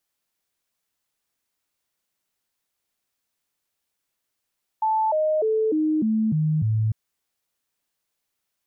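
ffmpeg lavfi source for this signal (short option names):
-f lavfi -i "aevalsrc='0.119*clip(min(mod(t,0.3),0.3-mod(t,0.3))/0.005,0,1)*sin(2*PI*876*pow(2,-floor(t/0.3)/2)*mod(t,0.3))':d=2.1:s=44100"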